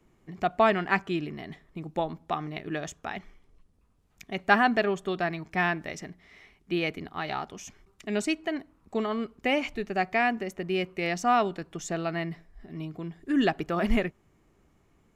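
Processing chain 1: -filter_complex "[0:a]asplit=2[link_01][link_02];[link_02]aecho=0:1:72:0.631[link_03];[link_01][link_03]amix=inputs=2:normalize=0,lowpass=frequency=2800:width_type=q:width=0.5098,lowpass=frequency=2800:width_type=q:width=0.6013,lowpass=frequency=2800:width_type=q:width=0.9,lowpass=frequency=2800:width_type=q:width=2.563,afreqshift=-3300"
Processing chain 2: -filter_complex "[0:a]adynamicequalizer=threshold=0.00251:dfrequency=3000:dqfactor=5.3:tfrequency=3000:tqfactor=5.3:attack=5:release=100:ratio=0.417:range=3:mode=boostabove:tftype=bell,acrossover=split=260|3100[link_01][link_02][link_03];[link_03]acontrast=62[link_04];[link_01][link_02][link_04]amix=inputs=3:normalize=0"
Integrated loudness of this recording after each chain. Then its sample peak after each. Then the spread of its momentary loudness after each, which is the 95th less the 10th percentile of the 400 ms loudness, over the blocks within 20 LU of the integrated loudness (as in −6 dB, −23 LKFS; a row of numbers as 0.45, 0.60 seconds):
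−24.5, −28.0 LKFS; −5.0, −3.0 dBFS; 16, 15 LU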